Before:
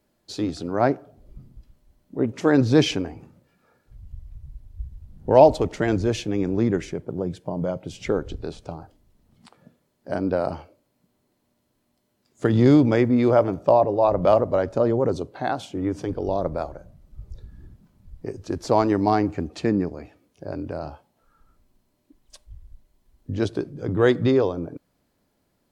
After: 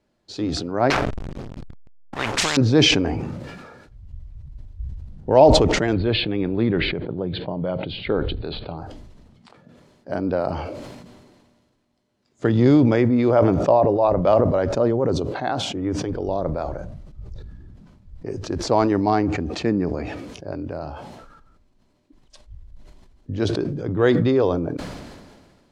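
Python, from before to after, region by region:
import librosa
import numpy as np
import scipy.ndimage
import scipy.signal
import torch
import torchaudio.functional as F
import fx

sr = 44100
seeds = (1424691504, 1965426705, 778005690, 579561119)

y = fx.chain(x, sr, fx.high_shelf(hz=2500.0, db=9.5),
    fx.backlash(play_db=-39.0),
    fx.spectral_comp(ratio=10.0), at=(0.9, 2.57))
y = fx.chain(y, sr, fx.steep_lowpass(hz=4400.0, slope=96),
    fx.high_shelf(hz=3300.0, db=10.0), at=(5.93, 8.78))
y = scipy.signal.sosfilt(scipy.signal.butter(2, 6200.0, 'lowpass', fs=sr, output='sos'), y)
y = fx.sustainer(y, sr, db_per_s=34.0)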